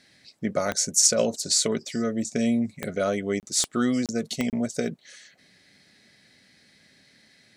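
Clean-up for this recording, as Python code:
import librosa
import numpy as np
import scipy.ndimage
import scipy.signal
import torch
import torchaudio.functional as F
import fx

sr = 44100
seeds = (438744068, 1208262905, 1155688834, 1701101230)

y = fx.fix_declick_ar(x, sr, threshold=10.0)
y = fx.fix_interpolate(y, sr, at_s=(3.4, 4.06, 4.5), length_ms=28.0)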